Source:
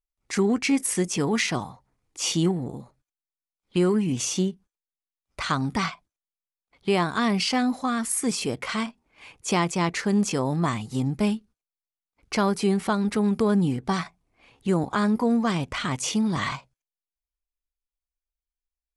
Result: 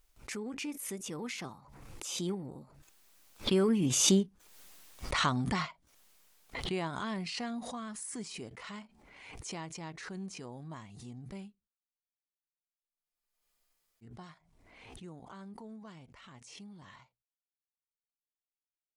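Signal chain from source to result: Doppler pass-by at 4.44 s, 23 m/s, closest 12 m; spectral freeze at 11.87 s, 2.17 s; swell ahead of each attack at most 42 dB/s

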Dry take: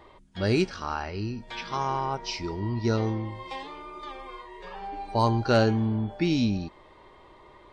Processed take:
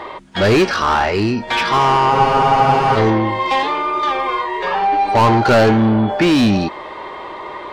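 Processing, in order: overdrive pedal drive 26 dB, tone 2 kHz, clips at -11.5 dBFS; spectral freeze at 2.14 s, 0.83 s; trim +7 dB

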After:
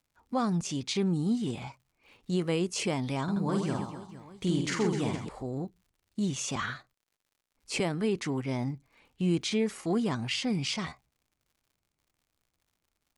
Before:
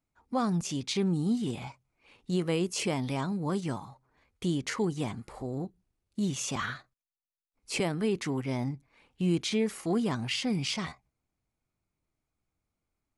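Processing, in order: low-pass 10 kHz 24 dB/octave; 3.23–5.29 s: reverse bouncing-ball echo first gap 50 ms, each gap 1.6×, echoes 5; crackle 120 per s -58 dBFS

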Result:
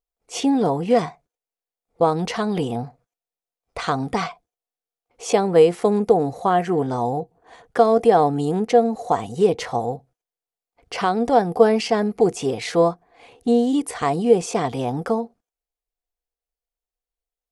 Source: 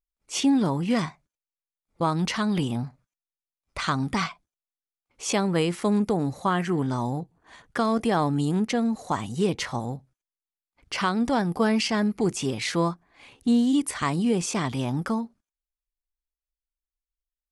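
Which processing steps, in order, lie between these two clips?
small resonant body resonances 480/700 Hz, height 16 dB, ringing for 35 ms; trim -1 dB

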